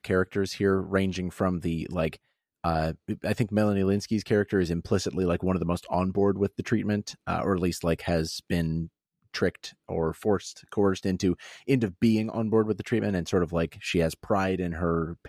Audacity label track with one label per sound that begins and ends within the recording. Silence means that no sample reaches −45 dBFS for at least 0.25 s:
2.640000	8.870000	sound